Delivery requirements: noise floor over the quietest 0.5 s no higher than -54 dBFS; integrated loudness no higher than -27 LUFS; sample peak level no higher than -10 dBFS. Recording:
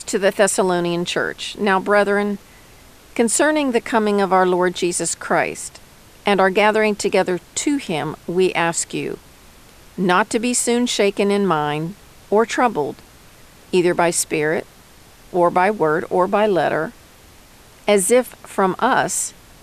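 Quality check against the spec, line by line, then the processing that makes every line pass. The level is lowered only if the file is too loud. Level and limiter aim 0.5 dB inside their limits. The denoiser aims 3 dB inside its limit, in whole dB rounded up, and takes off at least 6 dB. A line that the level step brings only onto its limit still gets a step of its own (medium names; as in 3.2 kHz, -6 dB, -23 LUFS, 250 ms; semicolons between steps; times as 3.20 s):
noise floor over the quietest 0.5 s -46 dBFS: fail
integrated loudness -18.5 LUFS: fail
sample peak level -4.0 dBFS: fail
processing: trim -9 dB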